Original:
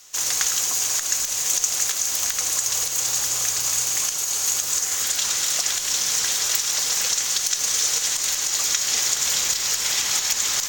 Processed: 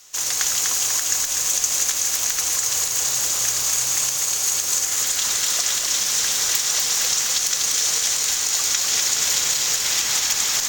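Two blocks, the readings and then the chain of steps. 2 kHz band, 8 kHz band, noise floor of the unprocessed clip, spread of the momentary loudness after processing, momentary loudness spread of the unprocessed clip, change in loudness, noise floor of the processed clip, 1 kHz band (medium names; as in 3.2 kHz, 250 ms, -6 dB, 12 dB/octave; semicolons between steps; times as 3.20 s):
+1.5 dB, +1.5 dB, -27 dBFS, 1 LU, 2 LU, +1.5 dB, -24 dBFS, +1.5 dB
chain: bit-crushed delay 247 ms, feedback 55%, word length 6-bit, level -3 dB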